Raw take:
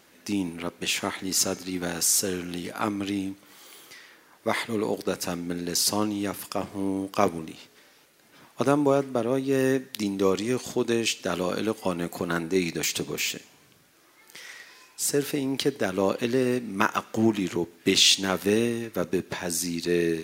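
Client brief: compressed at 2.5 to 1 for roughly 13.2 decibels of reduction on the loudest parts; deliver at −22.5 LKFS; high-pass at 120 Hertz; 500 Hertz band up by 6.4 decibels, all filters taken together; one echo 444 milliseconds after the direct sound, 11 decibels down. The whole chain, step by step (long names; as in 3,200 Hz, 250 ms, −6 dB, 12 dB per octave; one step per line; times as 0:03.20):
high-pass filter 120 Hz
parametric band 500 Hz +8 dB
downward compressor 2.5 to 1, threshold −32 dBFS
single-tap delay 444 ms −11 dB
level +10 dB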